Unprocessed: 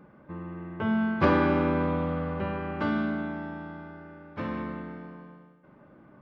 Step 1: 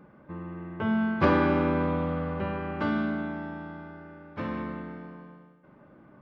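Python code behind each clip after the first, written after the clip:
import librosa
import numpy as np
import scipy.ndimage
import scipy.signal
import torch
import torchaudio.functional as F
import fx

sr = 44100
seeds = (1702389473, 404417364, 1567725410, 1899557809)

y = x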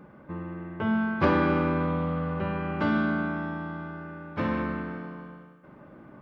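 y = fx.rider(x, sr, range_db=5, speed_s=2.0)
y = fx.echo_wet_lowpass(y, sr, ms=67, feedback_pct=76, hz=3600.0, wet_db=-15.5)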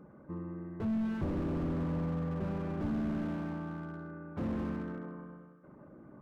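y = fx.envelope_sharpen(x, sr, power=1.5)
y = fx.slew_limit(y, sr, full_power_hz=12.0)
y = y * 10.0 ** (-4.5 / 20.0)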